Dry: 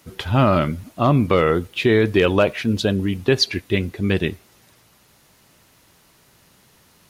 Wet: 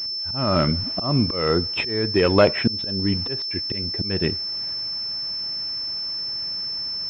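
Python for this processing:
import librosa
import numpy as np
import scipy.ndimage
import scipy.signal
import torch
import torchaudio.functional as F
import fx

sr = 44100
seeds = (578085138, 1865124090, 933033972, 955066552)

y = fx.auto_swell(x, sr, attack_ms=601.0)
y = fx.rider(y, sr, range_db=3, speed_s=0.5)
y = fx.pwm(y, sr, carrier_hz=5300.0)
y = y * 10.0 ** (5.0 / 20.0)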